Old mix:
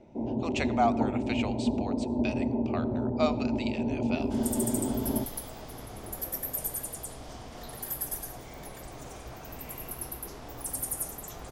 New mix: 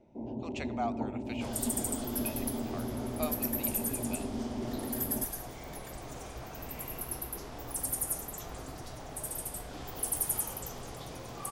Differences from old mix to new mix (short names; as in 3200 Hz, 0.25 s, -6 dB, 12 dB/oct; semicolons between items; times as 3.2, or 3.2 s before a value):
speech -9.0 dB; first sound -7.5 dB; second sound: entry -2.90 s